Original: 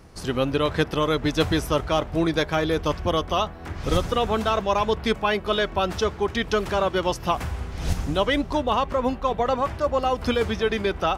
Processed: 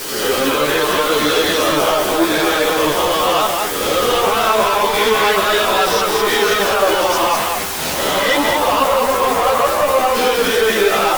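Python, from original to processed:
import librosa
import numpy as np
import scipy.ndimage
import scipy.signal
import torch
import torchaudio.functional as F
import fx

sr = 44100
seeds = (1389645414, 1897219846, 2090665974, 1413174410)

p1 = fx.spec_swells(x, sr, rise_s=0.83)
p2 = fx.bandpass_edges(p1, sr, low_hz=380.0, high_hz=7200.0)
p3 = fx.dmg_noise_colour(p2, sr, seeds[0], colour='white', level_db=-37.0)
p4 = fx.leveller(p3, sr, passes=2)
p5 = fx.over_compress(p4, sr, threshold_db=-19.0, ratio=-1.0)
p6 = p4 + (p5 * 10.0 ** (-3.0 / 20.0))
p7 = fx.tube_stage(p6, sr, drive_db=11.0, bias=0.4)
p8 = p7 + fx.echo_single(p7, sr, ms=202, db=-3.0, dry=0)
p9 = fx.ensemble(p8, sr)
y = p9 * 10.0 ** (2.5 / 20.0)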